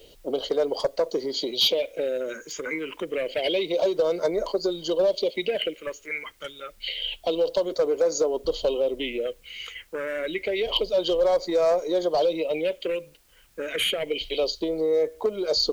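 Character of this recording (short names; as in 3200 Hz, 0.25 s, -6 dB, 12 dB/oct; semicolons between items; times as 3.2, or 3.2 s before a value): phasing stages 4, 0.28 Hz, lowest notch 680–2800 Hz; a quantiser's noise floor 10-bit, dither triangular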